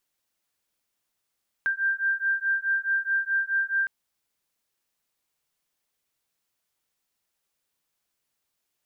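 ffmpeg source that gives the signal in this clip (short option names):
-f lavfi -i "aevalsrc='0.0501*(sin(2*PI*1580*t)+sin(2*PI*1584.7*t))':d=2.21:s=44100"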